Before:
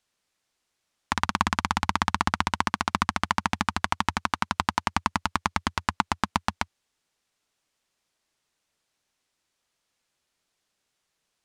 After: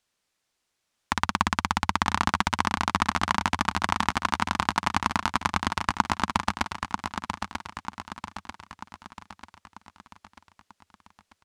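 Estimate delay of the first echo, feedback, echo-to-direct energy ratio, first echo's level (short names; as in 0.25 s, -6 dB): 0.941 s, 50%, -5.5 dB, -6.5 dB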